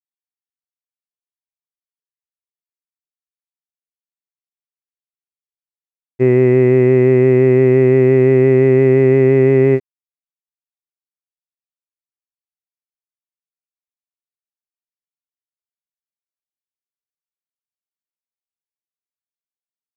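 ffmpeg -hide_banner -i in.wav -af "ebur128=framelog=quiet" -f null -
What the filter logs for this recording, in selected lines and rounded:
Integrated loudness:
  I:         -11.7 LUFS
  Threshold: -21.8 LUFS
Loudness range:
  LRA:         9.3 LU
  Threshold: -34.0 LUFS
  LRA low:   -20.6 LUFS
  LRA high:  -11.3 LUFS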